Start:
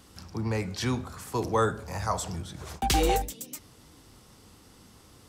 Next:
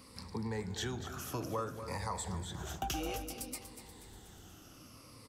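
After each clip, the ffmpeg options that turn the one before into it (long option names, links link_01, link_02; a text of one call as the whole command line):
ffmpeg -i in.wav -filter_complex "[0:a]afftfilt=real='re*pow(10,11/40*sin(2*PI*(0.94*log(max(b,1)*sr/1024/100)/log(2)-(-0.58)*(pts-256)/sr)))':imag='im*pow(10,11/40*sin(2*PI*(0.94*log(max(b,1)*sr/1024/100)/log(2)-(-0.58)*(pts-256)/sr)))':win_size=1024:overlap=0.75,acompressor=threshold=-34dB:ratio=4,asplit=2[link_01][link_02];[link_02]aecho=0:1:241|482|723|964|1205:0.282|0.141|0.0705|0.0352|0.0176[link_03];[link_01][link_03]amix=inputs=2:normalize=0,volume=-2.5dB" out.wav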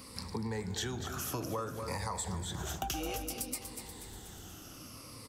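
ffmpeg -i in.wav -af "highshelf=frequency=5400:gain=4.5,acompressor=threshold=-40dB:ratio=2.5,volume=5dB" out.wav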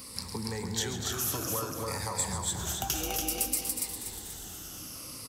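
ffmpeg -i in.wav -filter_complex "[0:a]highshelf=frequency=4300:gain=10,asplit=2[link_01][link_02];[link_02]aecho=0:1:137|285.7:0.282|0.708[link_03];[link_01][link_03]amix=inputs=2:normalize=0" out.wav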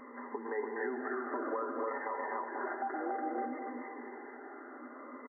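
ffmpeg -i in.wav -af "afftfilt=real='re*between(b*sr/4096,230,2100)':imag='im*between(b*sr/4096,230,2100)':win_size=4096:overlap=0.75,aecho=1:1:5:0.45,alimiter=level_in=7.5dB:limit=-24dB:level=0:latency=1:release=199,volume=-7.5dB,volume=4.5dB" out.wav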